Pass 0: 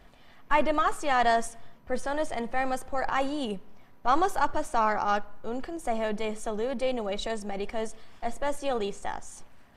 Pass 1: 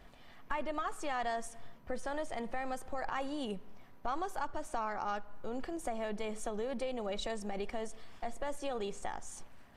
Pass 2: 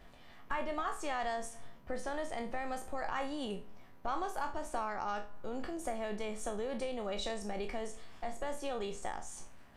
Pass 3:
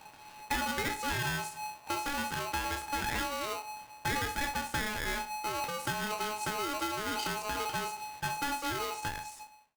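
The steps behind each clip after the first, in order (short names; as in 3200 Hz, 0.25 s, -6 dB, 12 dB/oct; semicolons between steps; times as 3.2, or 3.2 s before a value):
compressor 4:1, threshold -32 dBFS, peak gain reduction 13 dB; gain -2 dB
spectral trails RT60 0.33 s; gain -1 dB
ending faded out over 0.76 s; polarity switched at an audio rate 850 Hz; gain +2.5 dB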